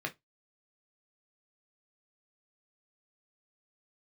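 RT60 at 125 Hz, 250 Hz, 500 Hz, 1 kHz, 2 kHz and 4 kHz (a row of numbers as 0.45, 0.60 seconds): 0.20, 0.15, 0.15, 0.15, 0.15, 0.15 seconds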